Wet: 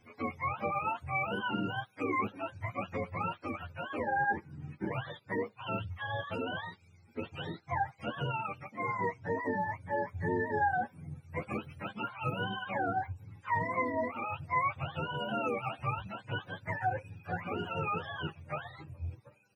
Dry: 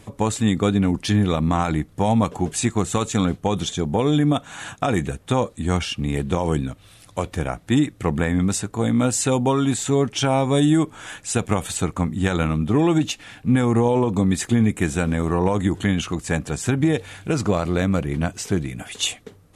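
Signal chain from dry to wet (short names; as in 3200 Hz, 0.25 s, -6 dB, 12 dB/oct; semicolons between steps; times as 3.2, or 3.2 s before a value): spectrum mirrored in octaves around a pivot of 490 Hz; endless flanger 9.3 ms -0.28 Hz; gain -9 dB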